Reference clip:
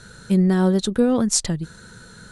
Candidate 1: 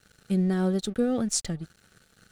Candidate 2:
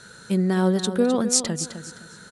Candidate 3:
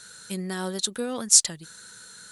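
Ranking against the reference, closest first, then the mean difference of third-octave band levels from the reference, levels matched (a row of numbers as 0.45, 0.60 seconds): 1, 2, 3; 3.5, 4.5, 6.0 decibels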